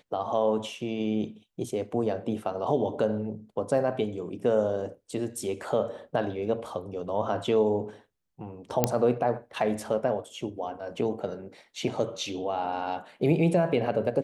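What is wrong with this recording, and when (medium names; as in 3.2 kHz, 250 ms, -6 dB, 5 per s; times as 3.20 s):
8.84 s: pop -6 dBFS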